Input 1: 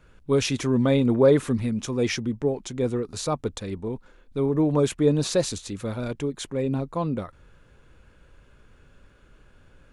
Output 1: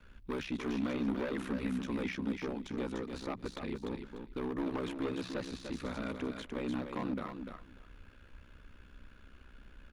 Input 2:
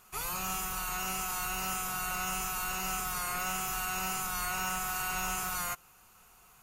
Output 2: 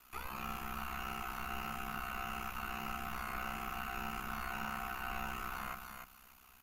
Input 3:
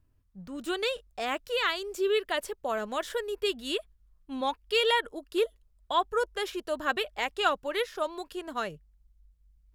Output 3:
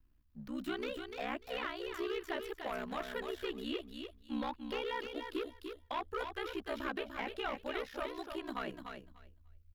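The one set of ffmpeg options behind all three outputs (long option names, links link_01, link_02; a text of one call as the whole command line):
ffmpeg -i in.wav -filter_complex "[0:a]acrossover=split=210|780[link_01][link_02][link_03];[link_01]acompressor=threshold=-43dB:ratio=4[link_04];[link_02]acompressor=threshold=-31dB:ratio=4[link_05];[link_03]acompressor=threshold=-36dB:ratio=4[link_06];[link_04][link_05][link_06]amix=inputs=3:normalize=0,aeval=exprs='val(0)*sin(2*PI*32*n/s)':channel_layout=same,bandreject=frequency=60:width_type=h:width=6,bandreject=frequency=120:width_type=h:width=6,bandreject=frequency=180:width_type=h:width=6,asoftclip=type=hard:threshold=-30dB,equalizer=frequency=125:width_type=o:width=1:gain=-9,equalizer=frequency=250:width_type=o:width=1:gain=7,equalizer=frequency=8000:width_type=o:width=1:gain=-11,aecho=1:1:296|592|888:0.447|0.067|0.0101,acrossover=split=2800[link_07][link_08];[link_08]acompressor=threshold=-56dB:ratio=4:attack=1:release=60[link_09];[link_07][link_09]amix=inputs=2:normalize=0,equalizer=frequency=450:width=0.55:gain=-9.5,volume=4dB" out.wav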